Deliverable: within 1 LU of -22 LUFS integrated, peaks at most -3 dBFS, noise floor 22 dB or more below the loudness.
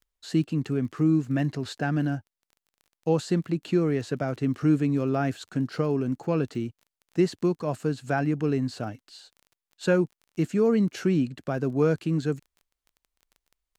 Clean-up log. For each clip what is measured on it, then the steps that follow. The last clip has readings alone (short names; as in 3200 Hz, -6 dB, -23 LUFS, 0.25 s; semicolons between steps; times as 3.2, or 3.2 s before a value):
ticks 22/s; loudness -27.0 LUFS; peak -10.0 dBFS; loudness target -22.0 LUFS
-> de-click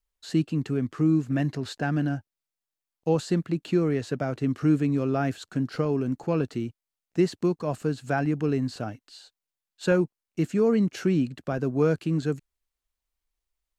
ticks 0/s; loudness -27.0 LUFS; peak -10.0 dBFS; loudness target -22.0 LUFS
-> gain +5 dB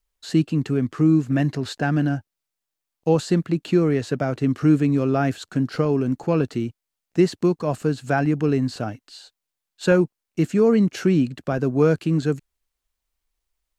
loudness -22.0 LUFS; peak -5.0 dBFS; noise floor -84 dBFS